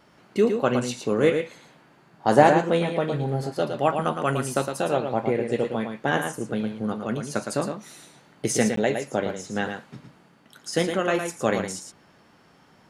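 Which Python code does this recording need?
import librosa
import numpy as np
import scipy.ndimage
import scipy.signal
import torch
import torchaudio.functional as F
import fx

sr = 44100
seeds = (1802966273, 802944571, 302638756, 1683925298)

y = fx.fix_interpolate(x, sr, at_s=(8.76,), length_ms=13.0)
y = fx.fix_echo_inverse(y, sr, delay_ms=112, level_db=-6.5)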